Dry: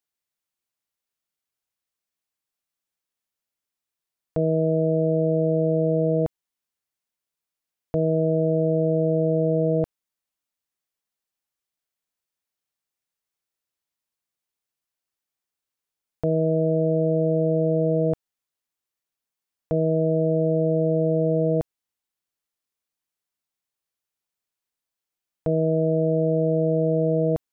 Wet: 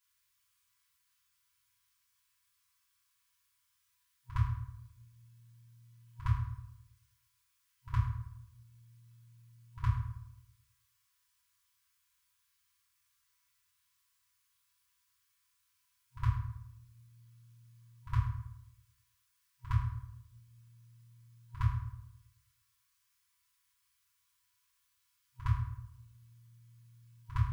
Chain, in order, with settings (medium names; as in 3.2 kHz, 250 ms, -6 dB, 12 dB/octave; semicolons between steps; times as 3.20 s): FFT band-reject 120–950 Hz; dynamic bell 190 Hz, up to +7 dB, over -60 dBFS, Q 0.82; pre-echo 62 ms -15 dB; reverberation RT60 0.80 s, pre-delay 3 ms, DRR -9.5 dB; trim +1.5 dB